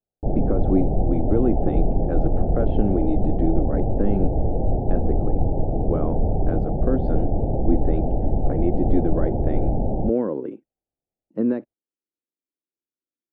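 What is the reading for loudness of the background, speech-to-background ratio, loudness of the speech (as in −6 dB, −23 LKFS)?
−24.5 LKFS, −3.0 dB, −27.5 LKFS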